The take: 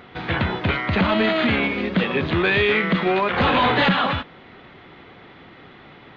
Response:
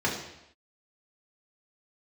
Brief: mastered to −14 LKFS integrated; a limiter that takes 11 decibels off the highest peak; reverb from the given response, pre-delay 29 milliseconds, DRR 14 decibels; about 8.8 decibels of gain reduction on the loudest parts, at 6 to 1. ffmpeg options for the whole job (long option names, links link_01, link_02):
-filter_complex "[0:a]acompressor=threshold=-25dB:ratio=6,alimiter=level_in=1.5dB:limit=-24dB:level=0:latency=1,volume=-1.5dB,asplit=2[link_01][link_02];[1:a]atrim=start_sample=2205,adelay=29[link_03];[link_02][link_03]afir=irnorm=-1:irlink=0,volume=-25.5dB[link_04];[link_01][link_04]amix=inputs=2:normalize=0,volume=18dB"